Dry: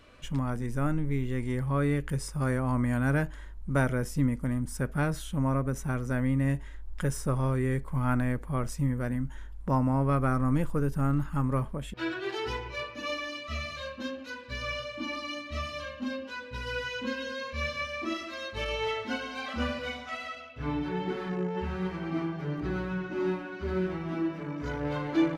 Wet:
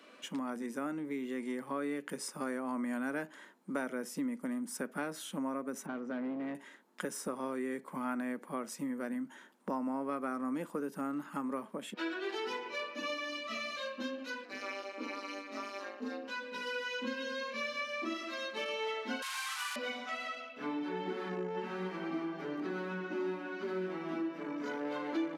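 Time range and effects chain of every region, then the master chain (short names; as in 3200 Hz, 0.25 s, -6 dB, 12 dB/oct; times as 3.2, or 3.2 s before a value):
5.86–6.55 overloaded stage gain 27 dB + tape spacing loss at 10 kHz 29 dB
14.45–16.28 bell 3200 Hz -11.5 dB 0.4 oct + AM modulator 200 Hz, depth 80%
19.22–19.76 delta modulation 64 kbps, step -29.5 dBFS + steep high-pass 860 Hz 72 dB/oct
whole clip: steep high-pass 200 Hz 48 dB/oct; compressor 2.5:1, threshold -36 dBFS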